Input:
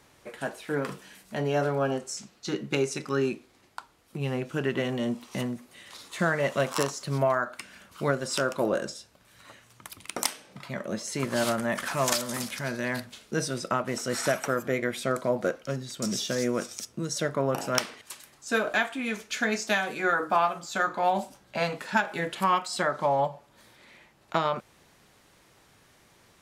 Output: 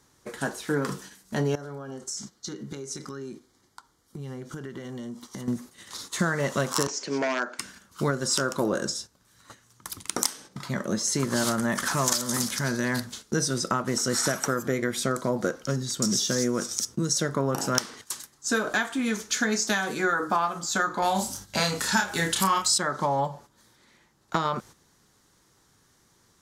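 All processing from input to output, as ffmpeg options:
ffmpeg -i in.wav -filter_complex "[0:a]asettb=1/sr,asplit=3[link_01][link_02][link_03];[link_01]atrim=end=1.554[link_04];[link_02]atrim=start=1.55:end=5.48,asetpts=PTS-STARTPTS,afade=type=in:duration=0.004:curve=qsin,afade=type=out:start_time=3.926:duration=0.004:curve=qsin,asuperstop=centerf=2600:order=4:qfactor=7.8,acompressor=threshold=-41dB:ratio=6:attack=3.2:release=140:knee=1:detection=peak[link_05];[link_03]atrim=start=5.476[link_06];[link_04][link_05]acrossfade=duration=0.004:curve1=hsin:curve2=qsin[link_07];[link_07][link_06]acrossfade=duration=0.004:curve1=qsin:curve2=hsin,asettb=1/sr,asplit=3[link_08][link_09][link_10];[link_08]atrim=end=6.874[link_11];[link_09]atrim=start=6.87:end=7.59,asetpts=PTS-STARTPTS,afade=type=in:duration=0.004:curve=qsin,afade=type=out:start_time=0.716:duration=0.004:curve=qsin,aeval=exprs='0.1*(abs(mod(val(0)/0.1+3,4)-2)-1)':channel_layout=same,highpass=frequency=250:width=0.5412,highpass=frequency=250:width=1.3066,equalizer=frequency=440:width_type=q:width=4:gain=3,equalizer=frequency=1200:width_type=q:width=4:gain=-10,equalizer=frequency=2400:width_type=q:width=4:gain=9,equalizer=frequency=3900:width_type=q:width=4:gain=-7,lowpass=frequency=6200:width=0.5412,lowpass=frequency=6200:width=1.3066[link_12];[link_10]atrim=start=7.586[link_13];[link_11][link_12]acrossfade=duration=0.004:curve1=hsin:curve2=qsin[link_14];[link_14][link_13]acrossfade=duration=0.004:curve1=qsin:curve2=hsin,asettb=1/sr,asplit=3[link_15][link_16][link_17];[link_15]atrim=end=21.024[link_18];[link_16]atrim=start=21.02:end=22.78,asetpts=PTS-STARTPTS,afade=type=in:duration=0.004:curve=qsin,afade=type=out:start_time=1.756:duration=0.004:curve=qsin,highshelf=frequency=2600:gain=11.5,aeval=exprs='val(0)+0.002*(sin(2*PI*50*n/s)+sin(2*PI*2*50*n/s)/2+sin(2*PI*3*50*n/s)/3+sin(2*PI*4*50*n/s)/4+sin(2*PI*5*50*n/s)/5)':channel_layout=same,asplit=2[link_19][link_20];[link_20]adelay=31,volume=-4.5dB[link_21];[link_19][link_21]amix=inputs=2:normalize=0,atrim=end_sample=77616[link_22];[link_17]atrim=start=22.776[link_23];[link_18][link_22]acrossfade=duration=0.004:curve1=hsin:curve2=qsin[link_24];[link_24][link_23]acrossfade=duration=0.004:curve1=qsin:curve2=hsin,agate=range=-10dB:threshold=-48dB:ratio=16:detection=peak,equalizer=frequency=630:width_type=o:width=0.67:gain=-8,equalizer=frequency=2500:width_type=o:width=0.67:gain=-10,equalizer=frequency=6300:width_type=o:width=0.67:gain=5,acompressor=threshold=-30dB:ratio=3,volume=7.5dB" out.wav

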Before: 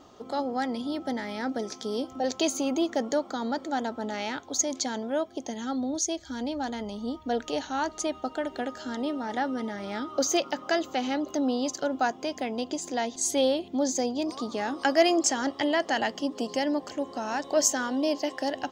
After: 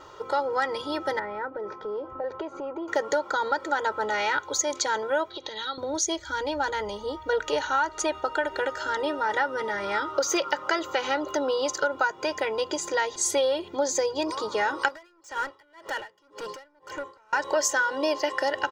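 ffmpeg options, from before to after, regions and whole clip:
ffmpeg -i in.wav -filter_complex "[0:a]asettb=1/sr,asplit=3[link_01][link_02][link_03];[link_01]atrim=end=1.194[link_04];[link_02]atrim=start=1.19:end=2.88,asetpts=PTS-STARTPTS,afade=type=in:duration=0.004:curve=qsin,afade=type=out:start_time=1.686:duration=0.004:curve=qsin,lowpass=1200,acompressor=threshold=-34dB:ratio=4:attack=3.2:release=140:knee=1:detection=peak[link_05];[link_03]atrim=start=2.876[link_06];[link_04][link_05]acrossfade=duration=0.004:curve1=hsin:curve2=qsin[link_07];[link_07][link_06]acrossfade=duration=0.004:curve1=qsin:curve2=hsin,asettb=1/sr,asplit=3[link_08][link_09][link_10];[link_08]atrim=end=5.304[link_11];[link_09]atrim=start=5.3:end=5.78,asetpts=PTS-STARTPTS,afade=type=in:duration=0.004:curve=qsin,afade=type=out:start_time=0.476:duration=0.004:curve=qsin,acompressor=threshold=-39dB:ratio=4:attack=3.2:release=140:knee=1:detection=peak,lowpass=frequency=3900:width_type=q:width=12[link_12];[link_10]atrim=start=5.776[link_13];[link_11][link_12]acrossfade=duration=0.004:curve1=hsin:curve2=qsin[link_14];[link_14][link_13]acrossfade=duration=0.004:curve1=qsin:curve2=hsin,asettb=1/sr,asplit=3[link_15][link_16][link_17];[link_15]atrim=end=14.884[link_18];[link_16]atrim=start=14.88:end=17.33,asetpts=PTS-STARTPTS,afade=type=in:duration=0.004:curve=qsin,afade=type=out:start_time=2.446:duration=0.004:curve=qsin,acompressor=threshold=-31dB:ratio=6:attack=3.2:release=140:knee=1:detection=peak,asoftclip=type=hard:threshold=-33.5dB,aeval=exprs='val(0)*pow(10,-30*(0.5-0.5*cos(2*PI*1.9*n/s))/20)':channel_layout=same[link_19];[link_17]atrim=start=17.326[link_20];[link_18][link_19]acrossfade=duration=0.004:curve1=hsin:curve2=qsin[link_21];[link_21][link_20]acrossfade=duration=0.004:curve1=qsin:curve2=hsin,equalizer=frequency=1400:width_type=o:width=1.4:gain=11.5,aecho=1:1:2.1:0.98,acompressor=threshold=-21dB:ratio=6" out.wav

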